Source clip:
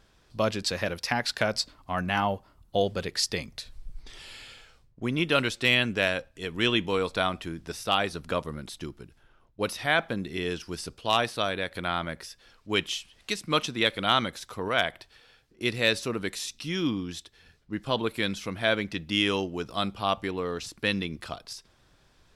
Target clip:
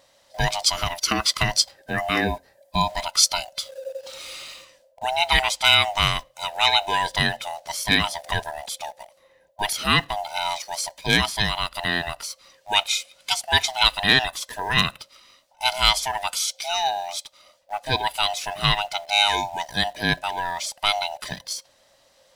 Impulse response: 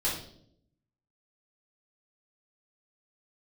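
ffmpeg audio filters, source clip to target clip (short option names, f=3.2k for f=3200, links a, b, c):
-filter_complex "[0:a]afftfilt=real='real(if(lt(b,1008),b+24*(1-2*mod(floor(b/24),2)),b),0)':imag='imag(if(lt(b,1008),b+24*(1-2*mod(floor(b/24),2)),b),0)':win_size=2048:overlap=0.75,highshelf=f=2.9k:g=10,asplit=2[a][b];[b]acrusher=bits=6:mix=0:aa=0.000001,volume=-9.5dB[c];[a][c]amix=inputs=2:normalize=0"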